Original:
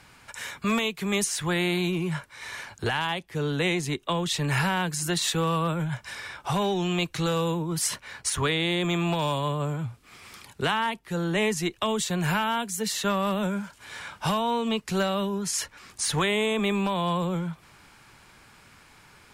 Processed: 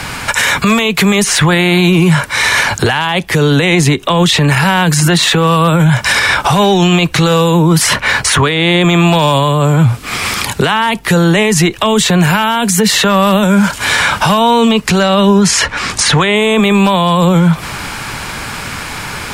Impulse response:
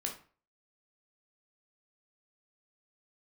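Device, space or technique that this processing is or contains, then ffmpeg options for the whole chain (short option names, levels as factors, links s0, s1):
mastering chain: -filter_complex "[0:a]asettb=1/sr,asplit=3[s0][s1][s2];[s0]atrim=end=14.904[s3];[s1]atrim=start=14.9:end=16.36,asetpts=PTS-STARTPTS,afade=t=in:d=0.004:c=qsin,afade=t=out:st=1.456:d=0.004:c=qsin,lowpass=8400[s4];[s2]atrim=start=16.356[s5];[s3][s4]acrossfade=d=0.004:c1=hsin:c2=qsin[s6];[s6][s5]acrossfade=d=0.004:c1=qsin:c2=hsin,equalizer=f=360:t=o:w=0.3:g=-3,acrossover=split=86|3300[s7][s8][s9];[s7]acompressor=threshold=0.00158:ratio=4[s10];[s8]acompressor=threshold=0.0398:ratio=4[s11];[s9]acompressor=threshold=0.00794:ratio=4[s12];[s10][s11][s12]amix=inputs=3:normalize=0,acompressor=threshold=0.02:ratio=2.5,asoftclip=type=hard:threshold=0.0841,alimiter=level_in=39.8:limit=0.891:release=50:level=0:latency=1,volume=0.891"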